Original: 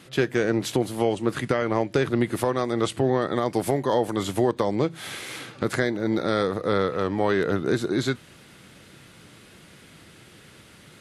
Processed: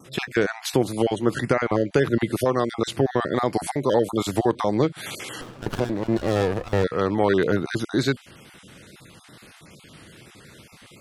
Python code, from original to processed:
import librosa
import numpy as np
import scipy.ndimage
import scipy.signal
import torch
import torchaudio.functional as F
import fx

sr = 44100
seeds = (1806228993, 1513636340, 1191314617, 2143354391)

y = fx.spec_dropout(x, sr, seeds[0], share_pct=28)
y = fx.wow_flutter(y, sr, seeds[1], rate_hz=2.1, depth_cents=51.0)
y = fx.running_max(y, sr, window=17, at=(5.41, 6.84))
y = y * librosa.db_to_amplitude(3.0)